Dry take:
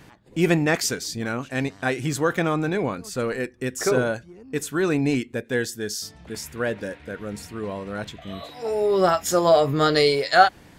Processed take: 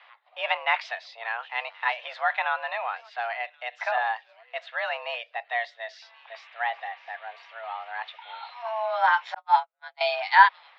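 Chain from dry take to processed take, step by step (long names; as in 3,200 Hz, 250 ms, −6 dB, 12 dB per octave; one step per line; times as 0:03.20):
delay with a high-pass on its return 1,075 ms, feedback 52%, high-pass 2,700 Hz, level −19 dB
0:09.34–0:10.01: noise gate −14 dBFS, range −52 dB
single-sideband voice off tune +230 Hz 530–3,500 Hz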